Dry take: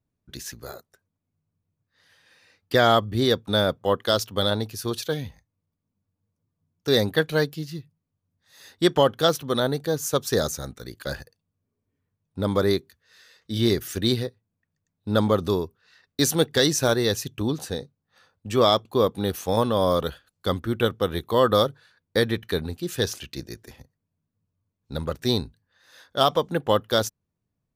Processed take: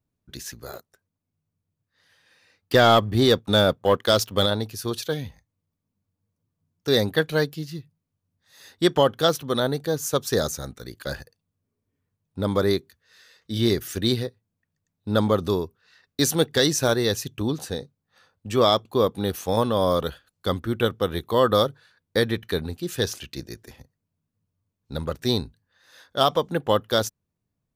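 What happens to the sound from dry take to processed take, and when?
0:00.73–0:04.46: leveller curve on the samples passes 1

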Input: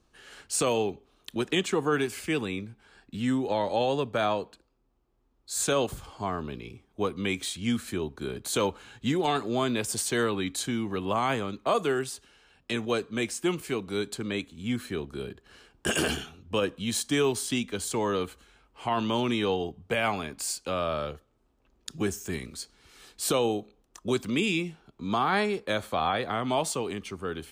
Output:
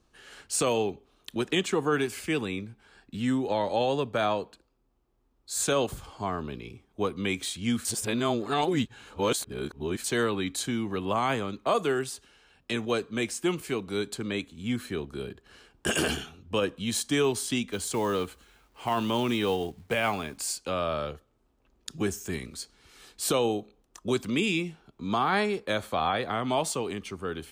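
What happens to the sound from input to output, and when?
0:07.85–0:10.04: reverse
0:17.72–0:20.38: log-companded quantiser 6 bits

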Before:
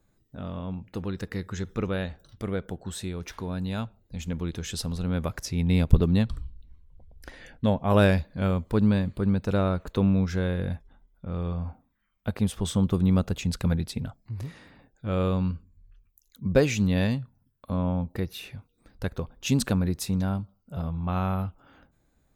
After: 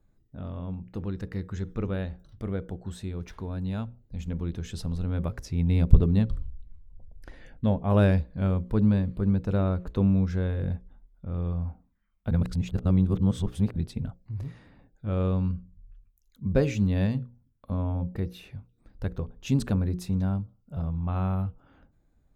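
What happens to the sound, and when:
0:12.31–0:13.76: reverse
whole clip: spectral tilt −2 dB per octave; mains-hum notches 60/120/180/240/300/360/420/480/540 Hz; level −5 dB

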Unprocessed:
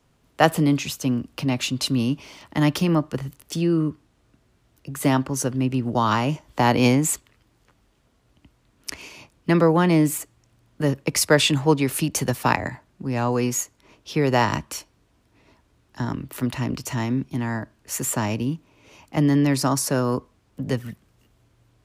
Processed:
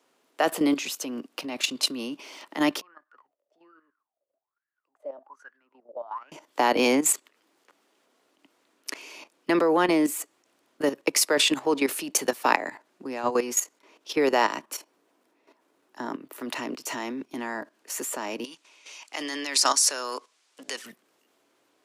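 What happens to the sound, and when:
0:02.81–0:06.32: LFO wah 1.2 Hz 550–1,700 Hz, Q 19
0:14.61–0:16.40: parametric band 4,400 Hz −6 dB 2.8 octaves
0:18.44–0:20.86: meter weighting curve ITU-R 468
whole clip: high-pass filter 300 Hz 24 dB per octave; output level in coarse steps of 12 dB; level +3.5 dB

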